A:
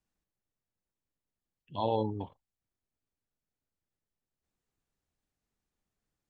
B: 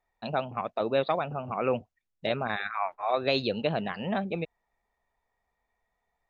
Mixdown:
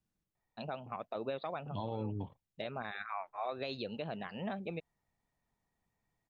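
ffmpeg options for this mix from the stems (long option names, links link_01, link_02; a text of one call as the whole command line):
ffmpeg -i stem1.wav -i stem2.wav -filter_complex "[0:a]equalizer=frequency=140:width_type=o:width=2:gain=9.5,acompressor=threshold=-32dB:ratio=3,volume=-3dB,asplit=2[link_01][link_02];[1:a]adelay=350,volume=-8dB[link_03];[link_02]apad=whole_len=297357[link_04];[link_03][link_04]sidechaincompress=threshold=-54dB:ratio=5:attack=9.4:release=144[link_05];[link_01][link_05]amix=inputs=2:normalize=0,alimiter=level_in=3.5dB:limit=-24dB:level=0:latency=1:release=141,volume=-3.5dB" out.wav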